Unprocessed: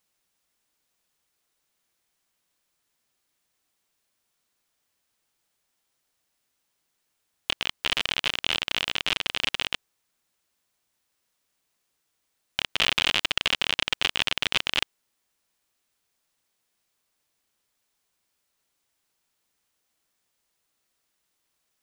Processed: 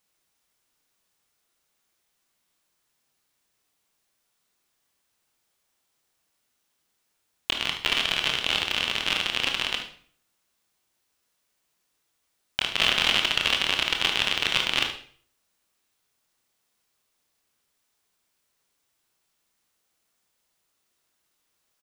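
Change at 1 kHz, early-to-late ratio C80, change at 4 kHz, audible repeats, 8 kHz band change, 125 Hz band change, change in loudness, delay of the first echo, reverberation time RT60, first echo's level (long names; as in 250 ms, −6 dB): +2.5 dB, 11.5 dB, +1.5 dB, 1, +2.0 dB, +1.5 dB, +2.0 dB, 74 ms, 0.50 s, −11.0 dB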